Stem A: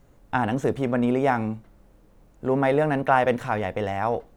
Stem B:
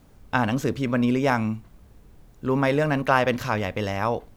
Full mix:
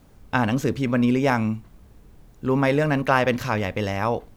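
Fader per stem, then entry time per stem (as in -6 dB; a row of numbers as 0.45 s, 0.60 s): -14.0 dB, +1.0 dB; 0.00 s, 0.00 s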